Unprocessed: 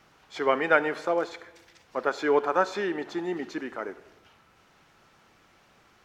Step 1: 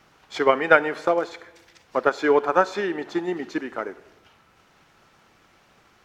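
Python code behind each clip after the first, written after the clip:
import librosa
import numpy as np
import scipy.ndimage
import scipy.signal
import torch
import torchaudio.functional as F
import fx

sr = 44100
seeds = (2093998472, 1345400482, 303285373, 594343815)

y = fx.transient(x, sr, attack_db=6, sustain_db=0)
y = y * 10.0 ** (2.0 / 20.0)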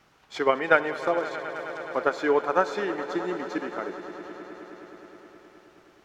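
y = fx.echo_swell(x, sr, ms=105, loudest=5, wet_db=-17.5)
y = y * 10.0 ** (-4.0 / 20.0)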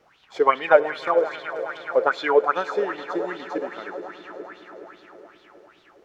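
y = fx.bell_lfo(x, sr, hz=2.5, low_hz=450.0, high_hz=3800.0, db=18)
y = y * 10.0 ** (-5.0 / 20.0)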